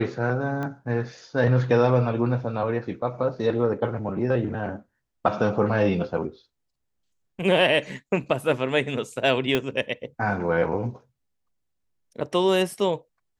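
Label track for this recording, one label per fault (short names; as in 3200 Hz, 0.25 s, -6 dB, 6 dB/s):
0.630000	0.630000	pop -20 dBFS
9.550000	9.550000	pop -9 dBFS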